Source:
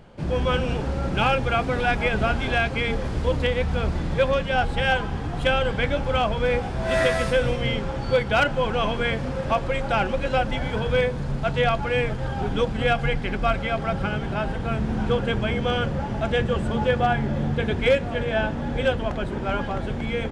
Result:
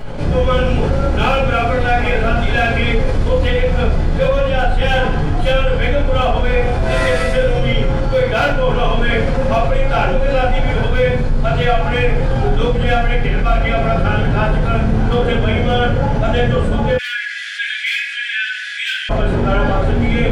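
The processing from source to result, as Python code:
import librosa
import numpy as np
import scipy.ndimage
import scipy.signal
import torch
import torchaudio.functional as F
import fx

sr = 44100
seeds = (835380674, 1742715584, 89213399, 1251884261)

y = np.clip(x, -10.0 ** (-13.5 / 20.0), 10.0 ** (-13.5 / 20.0))
y = fx.room_shoebox(y, sr, seeds[0], volume_m3=75.0, walls='mixed', distance_m=2.4)
y = fx.rider(y, sr, range_db=10, speed_s=0.5)
y = fx.steep_highpass(y, sr, hz=1600.0, slope=72, at=(16.97, 19.09), fade=0.02)
y = fx.env_flatten(y, sr, amount_pct=50)
y = y * 10.0 ** (-7.5 / 20.0)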